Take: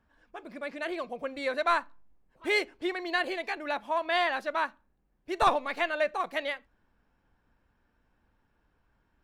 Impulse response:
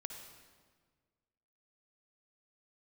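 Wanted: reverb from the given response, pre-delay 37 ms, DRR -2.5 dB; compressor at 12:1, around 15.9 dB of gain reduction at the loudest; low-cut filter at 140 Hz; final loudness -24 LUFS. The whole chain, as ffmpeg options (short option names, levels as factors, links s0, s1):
-filter_complex "[0:a]highpass=140,acompressor=threshold=0.0178:ratio=12,asplit=2[s0][s1];[1:a]atrim=start_sample=2205,adelay=37[s2];[s1][s2]afir=irnorm=-1:irlink=0,volume=1.78[s3];[s0][s3]amix=inputs=2:normalize=0,volume=3.98"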